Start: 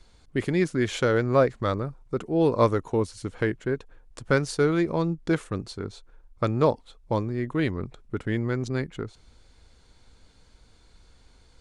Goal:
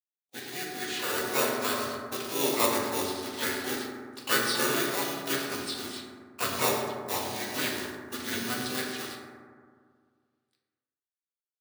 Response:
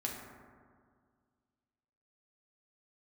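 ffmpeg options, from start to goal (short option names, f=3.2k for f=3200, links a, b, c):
-filter_complex "[0:a]asplit=2[a][b];[b]adelay=100,highpass=300,lowpass=3.4k,asoftclip=type=hard:threshold=-16.5dB,volume=-11dB[c];[a][c]amix=inputs=2:normalize=0,aresample=11025,acrusher=bits=6:mix=0:aa=0.000001,aresample=44100,equalizer=f=870:w=2:g=-2,asplit=4[d][e][f][g];[e]asetrate=37084,aresample=44100,atempo=1.18921,volume=0dB[h];[f]asetrate=52444,aresample=44100,atempo=0.840896,volume=-5dB[i];[g]asetrate=88200,aresample=44100,atempo=0.5,volume=-9dB[j];[d][h][i][j]amix=inputs=4:normalize=0,asplit=2[k][l];[l]acrusher=samples=14:mix=1:aa=0.000001,volume=-9.5dB[m];[k][m]amix=inputs=2:normalize=0,aderivative,agate=range=-20dB:threshold=-50dB:ratio=16:detection=peak[n];[1:a]atrim=start_sample=2205[o];[n][o]afir=irnorm=-1:irlink=0,dynaudnorm=f=370:g=7:m=8.5dB"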